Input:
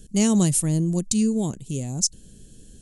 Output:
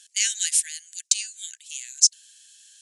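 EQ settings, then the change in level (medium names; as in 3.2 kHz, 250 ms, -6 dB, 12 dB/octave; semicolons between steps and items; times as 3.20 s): brick-wall FIR high-pass 1.5 kHz; distance through air 71 m; treble shelf 2.1 kHz +9.5 dB; +2.5 dB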